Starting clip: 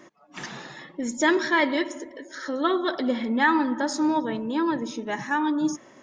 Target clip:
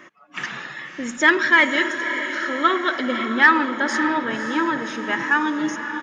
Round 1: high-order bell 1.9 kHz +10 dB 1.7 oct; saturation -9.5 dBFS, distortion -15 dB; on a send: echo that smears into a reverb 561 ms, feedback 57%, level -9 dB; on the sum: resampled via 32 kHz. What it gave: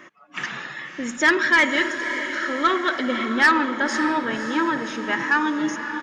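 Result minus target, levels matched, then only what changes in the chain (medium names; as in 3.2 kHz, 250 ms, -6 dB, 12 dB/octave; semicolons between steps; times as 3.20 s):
saturation: distortion +14 dB
change: saturation -0.5 dBFS, distortion -28 dB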